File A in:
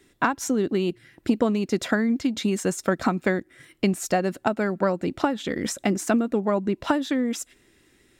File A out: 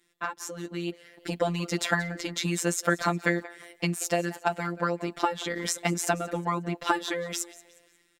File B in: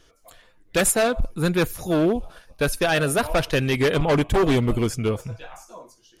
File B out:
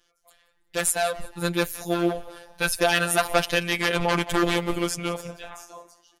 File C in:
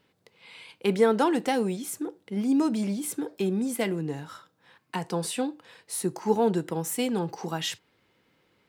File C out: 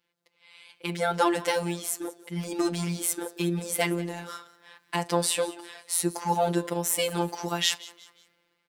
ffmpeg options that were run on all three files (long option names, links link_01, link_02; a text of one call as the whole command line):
ffmpeg -i in.wav -filter_complex "[0:a]lowshelf=frequency=450:gain=-11,dynaudnorm=framelen=350:gausssize=5:maxgain=16dB,asplit=2[link_01][link_02];[link_02]asplit=3[link_03][link_04][link_05];[link_03]adelay=180,afreqshift=84,volume=-19dB[link_06];[link_04]adelay=360,afreqshift=168,volume=-27.4dB[link_07];[link_05]adelay=540,afreqshift=252,volume=-35.8dB[link_08];[link_06][link_07][link_08]amix=inputs=3:normalize=0[link_09];[link_01][link_09]amix=inputs=2:normalize=0,afftfilt=real='hypot(re,im)*cos(PI*b)':imag='0':win_size=1024:overlap=0.75,volume=-4.5dB" out.wav